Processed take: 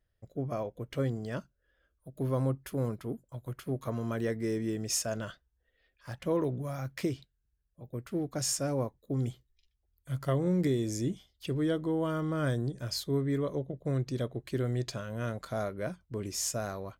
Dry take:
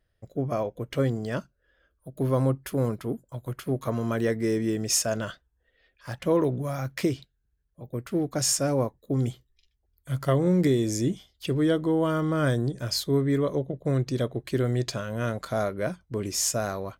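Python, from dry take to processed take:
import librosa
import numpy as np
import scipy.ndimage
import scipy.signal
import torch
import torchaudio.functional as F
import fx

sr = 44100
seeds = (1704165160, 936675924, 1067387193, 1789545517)

y = fx.low_shelf(x, sr, hz=130.0, db=3.5)
y = y * 10.0 ** (-7.0 / 20.0)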